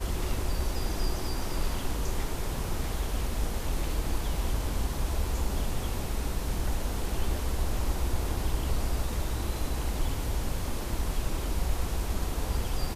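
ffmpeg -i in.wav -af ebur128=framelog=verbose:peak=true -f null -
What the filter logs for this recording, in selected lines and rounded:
Integrated loudness:
  I:         -33.0 LUFS
  Threshold: -43.0 LUFS
Loudness range:
  LRA:         1.0 LU
  Threshold: -52.9 LUFS
  LRA low:   -33.4 LUFS
  LRA high:  -32.5 LUFS
True peak:
  Peak:      -15.6 dBFS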